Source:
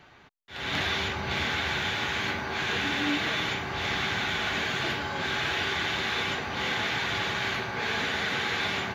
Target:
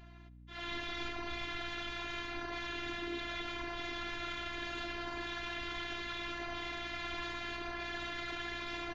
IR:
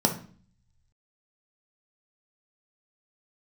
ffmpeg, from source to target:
-filter_complex "[0:a]acrossover=split=170[link_01][link_02];[link_02]alimiter=level_in=2.5dB:limit=-24dB:level=0:latency=1:release=14,volume=-2.5dB[link_03];[link_01][link_03]amix=inputs=2:normalize=0,afftfilt=real='hypot(re,im)*cos(2*PI*random(0))':imag='hypot(re,im)*sin(2*PI*random(1))':win_size=512:overlap=0.75,aecho=1:1:76|152|228|304:0.0794|0.0453|0.0258|0.0147,afftfilt=real='hypot(re,im)*cos(PI*b)':imag='0':win_size=512:overlap=0.75,adynamicsmooth=sensitivity=4:basefreq=7500,aeval=exprs='val(0)+0.00141*(sin(2*PI*60*n/s)+sin(2*PI*2*60*n/s)/2+sin(2*PI*3*60*n/s)/3+sin(2*PI*4*60*n/s)/4+sin(2*PI*5*60*n/s)/5)':channel_layout=same,volume=3.5dB"

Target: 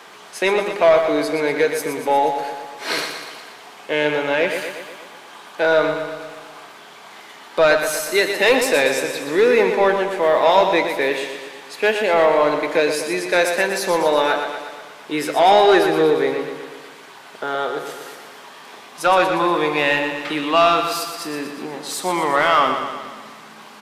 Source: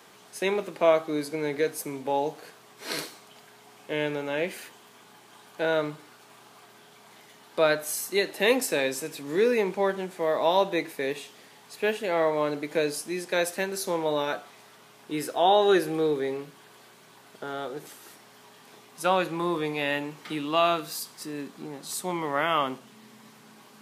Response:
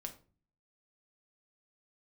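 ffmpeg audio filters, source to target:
-filter_complex "[0:a]asplit=2[link_01][link_02];[link_02]highpass=frequency=720:poles=1,volume=16dB,asoftclip=type=tanh:threshold=-7.5dB[link_03];[link_01][link_03]amix=inputs=2:normalize=0,lowpass=frequency=2900:poles=1,volume=-6dB,aecho=1:1:120|240|360|480|600|720|840|960:0.422|0.249|0.147|0.0866|0.0511|0.0301|0.0178|0.0105,volume=3.5dB"

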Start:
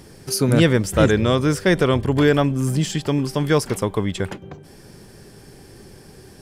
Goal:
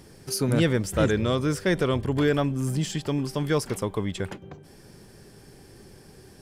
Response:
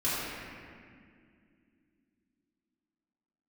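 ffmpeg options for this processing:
-filter_complex "[0:a]asplit=2[link_01][link_02];[link_02]asoftclip=type=tanh:threshold=-16.5dB,volume=-9dB[link_03];[link_01][link_03]amix=inputs=2:normalize=0,volume=-8dB"

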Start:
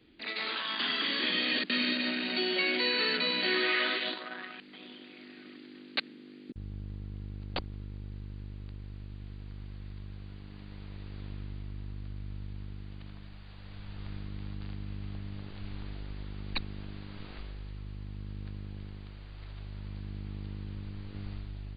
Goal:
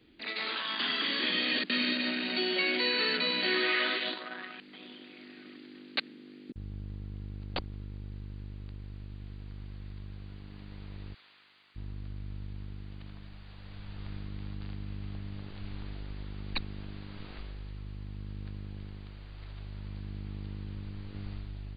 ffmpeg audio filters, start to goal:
ffmpeg -i in.wav -filter_complex "[0:a]asplit=3[link_01][link_02][link_03];[link_01]afade=type=out:start_time=11.13:duration=0.02[link_04];[link_02]highpass=1200,afade=type=in:start_time=11.13:duration=0.02,afade=type=out:start_time=11.75:duration=0.02[link_05];[link_03]afade=type=in:start_time=11.75:duration=0.02[link_06];[link_04][link_05][link_06]amix=inputs=3:normalize=0" out.wav

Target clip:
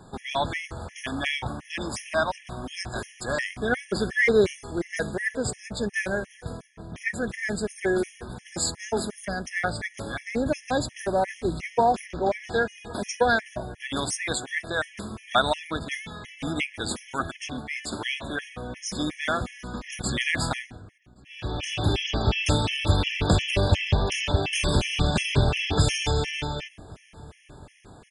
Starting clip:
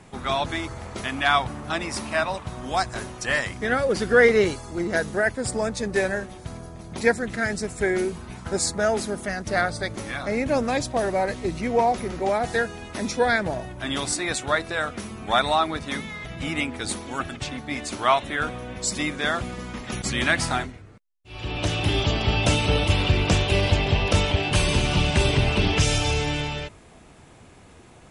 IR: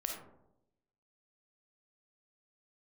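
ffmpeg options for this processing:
-filter_complex "[0:a]asettb=1/sr,asplit=3[link_01][link_02][link_03];[link_01]atrim=end=6.624[link_04];[link_02]atrim=start=6.62:end=7.14,asetpts=PTS-STARTPTS,afade=type=in:duration=0.004:curve=qsin,afade=type=out:start_time=0.516:duration=0.004:curve=qsin,highshelf=frequency=3400:gain=-9.5[link_05];[link_03]atrim=start=7.136[link_06];[link_04][link_05]acrossfade=duration=0.004:curve1=hsin:curve2=qsin[link_07];[link_07][link_06]acrossfade=duration=0.004:curve1=qsin:curve2=hsin,asettb=1/sr,asplit=3[link_08][link_09][link_10];[link_08]atrim=end=12.064[link_11];[link_09]atrim=start=12.06:end=12.69,asetpts=PTS-STARTPTS,afade=type=in:duration=0.004:curve=qsin,afade=type=out:start_time=0.626:duration=0.004:curve=qsin,lowpass=5900[link_12];[link_10]atrim=start=12.686[link_13];[link_11][link_12]acrossfade=duration=0.004:curve1=hsin:curve2=qsin[link_14];[link_14][link_13]acrossfade=duration=0.004:curve1=qsin:curve2=hsin,asplit=2[link_15][link_16];[link_16]adelay=1122,lowpass=frequency=1200:poles=1,volume=-23dB,asplit=2[link_17][link_18];[link_18]adelay=1122,lowpass=frequency=1200:poles=1,volume=0.49,asplit=2[link_19][link_20];[link_20]adelay=1122,lowpass=frequency=1200:poles=1,volume=0.49[link_21];[link_15][link_17][link_19][link_21]amix=inputs=4:normalize=0,asplit=2[link_22][link_23];[1:a]atrim=start_sample=2205[link_24];[link_23][link_24]afir=irnorm=-1:irlink=0,volume=-21.5dB[link_25];[link_22][link_25]amix=inputs=2:normalize=0,afftfilt=real='re*gt(sin(2*PI*2.8*pts/sr)*(1-2*mod(floor(b*sr/1024/1700),2)),0)':imag='im*gt(sin(2*PI*2.8*pts/sr)*(1-2*mod(floor(b*sr/1024/1700),2)),0)':win_size=1024:overlap=0.75"

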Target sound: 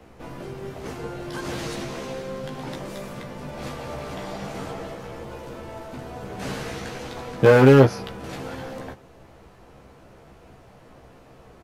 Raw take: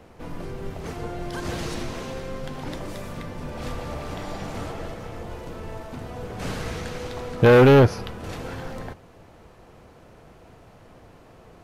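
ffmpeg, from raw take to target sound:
ffmpeg -i in.wav -filter_complex "[0:a]acrossover=split=100|1100[link_01][link_02][link_03];[link_01]acompressor=threshold=-47dB:ratio=6[link_04];[link_03]asoftclip=type=hard:threshold=-22dB[link_05];[link_04][link_02][link_05]amix=inputs=3:normalize=0,asplit=2[link_06][link_07];[link_07]adelay=15,volume=-4dB[link_08];[link_06][link_08]amix=inputs=2:normalize=0,volume=-1dB" out.wav

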